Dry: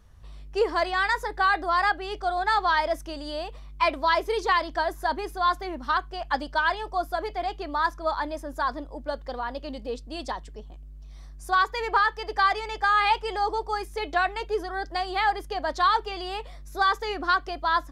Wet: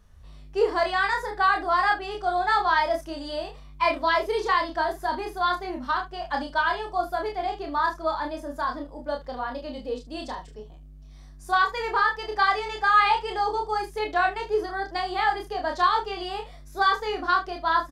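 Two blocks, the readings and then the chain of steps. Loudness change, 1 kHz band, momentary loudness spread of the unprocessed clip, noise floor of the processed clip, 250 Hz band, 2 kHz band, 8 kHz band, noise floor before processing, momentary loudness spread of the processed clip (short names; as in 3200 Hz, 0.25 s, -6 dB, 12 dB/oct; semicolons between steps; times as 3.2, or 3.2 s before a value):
+1.0 dB, +1.0 dB, 11 LU, -45 dBFS, +1.5 dB, +0.5 dB, n/a, -43 dBFS, 11 LU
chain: early reflections 28 ms -4 dB, 40 ms -12 dB, 73 ms -16.5 dB; harmonic-percussive split percussive -6 dB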